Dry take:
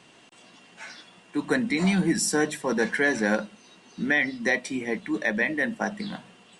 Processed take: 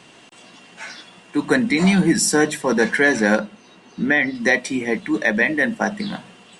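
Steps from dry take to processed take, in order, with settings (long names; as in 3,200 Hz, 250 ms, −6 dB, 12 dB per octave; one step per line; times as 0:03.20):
0:03.39–0:04.35: high-shelf EQ 3,300 Hz −8.5 dB
level +7 dB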